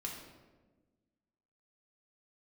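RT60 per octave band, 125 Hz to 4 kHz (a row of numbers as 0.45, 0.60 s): 1.7, 1.8, 1.5, 1.1, 0.95, 0.75 s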